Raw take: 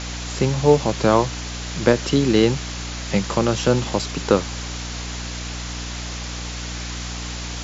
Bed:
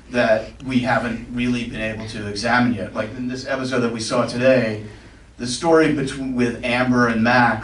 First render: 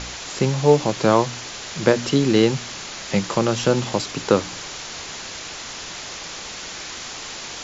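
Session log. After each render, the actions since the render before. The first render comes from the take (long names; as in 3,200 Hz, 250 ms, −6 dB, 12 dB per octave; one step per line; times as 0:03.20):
hum removal 60 Hz, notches 5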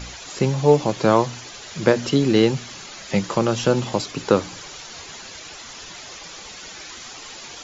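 broadband denoise 9 dB, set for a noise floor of −34 dBFS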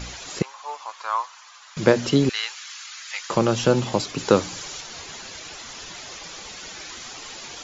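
0:00.42–0:01.77: four-pole ladder high-pass 950 Hz, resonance 60%
0:02.29–0:03.30: high-pass filter 1,200 Hz 24 dB per octave
0:04.18–0:04.81: high-shelf EQ 4,900 Hz +6.5 dB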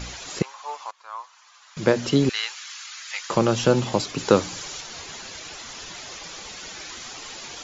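0:00.91–0:02.31: fade in, from −18 dB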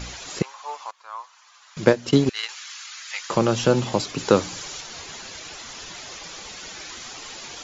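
0:01.82–0:02.49: transient designer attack +4 dB, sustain −10 dB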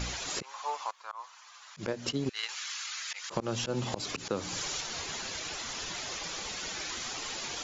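volume swells 159 ms
downward compressor 10 to 1, threshold −28 dBFS, peak gain reduction 12.5 dB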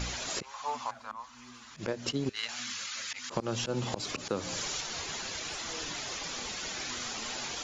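mix in bed −33.5 dB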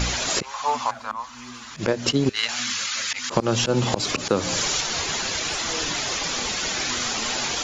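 level +11.5 dB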